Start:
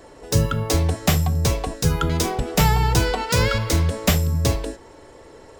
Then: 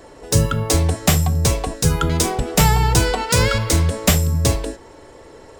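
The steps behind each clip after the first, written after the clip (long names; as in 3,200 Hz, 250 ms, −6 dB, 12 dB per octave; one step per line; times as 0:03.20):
dynamic equaliser 8,600 Hz, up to +7 dB, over −43 dBFS, Q 1.7
level +2.5 dB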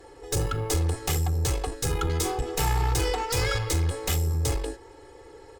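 tube saturation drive 18 dB, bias 0.6
comb filter 2.4 ms, depth 91%
level −6 dB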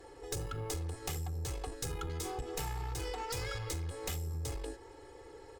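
downward compressor 6 to 1, threshold −31 dBFS, peak gain reduction 10.5 dB
level −4.5 dB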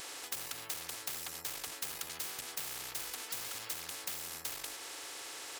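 high-pass filter 1,200 Hz 12 dB per octave
every bin compressed towards the loudest bin 10 to 1
level +5.5 dB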